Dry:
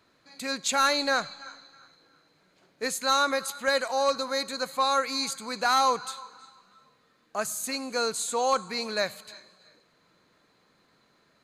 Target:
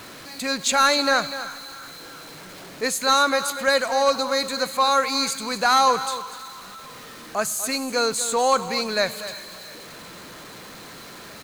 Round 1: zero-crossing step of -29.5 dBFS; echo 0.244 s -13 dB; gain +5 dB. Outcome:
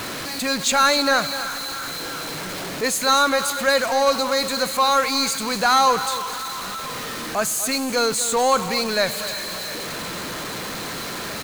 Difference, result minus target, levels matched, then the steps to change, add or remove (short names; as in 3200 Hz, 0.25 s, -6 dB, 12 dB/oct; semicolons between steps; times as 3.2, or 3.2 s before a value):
zero-crossing step: distortion +10 dB
change: zero-crossing step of -41 dBFS